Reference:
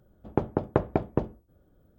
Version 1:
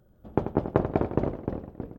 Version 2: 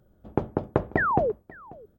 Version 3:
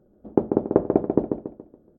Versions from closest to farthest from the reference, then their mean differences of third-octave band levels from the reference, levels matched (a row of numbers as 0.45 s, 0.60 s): 2, 1, 3; 3.0 dB, 5.0 dB, 7.0 dB